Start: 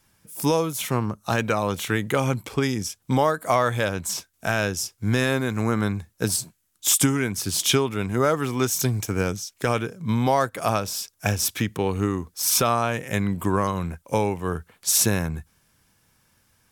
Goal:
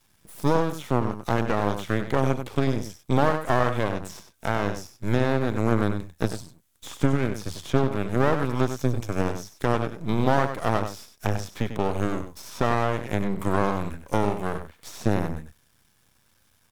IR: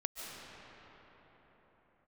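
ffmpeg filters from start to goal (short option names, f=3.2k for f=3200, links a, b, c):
-filter_complex "[0:a]acrossover=split=6500[a][b];[b]acompressor=threshold=-38dB:ratio=4:attack=1:release=60[c];[a][c]amix=inputs=2:normalize=0,equalizer=f=3.5k:t=o:w=0.21:g=5,acrossover=split=1400[d][e];[e]acompressor=threshold=-41dB:ratio=6[f];[d][f]amix=inputs=2:normalize=0,aecho=1:1:96:0.355,aeval=exprs='max(val(0),0)':c=same,volume=2.5dB"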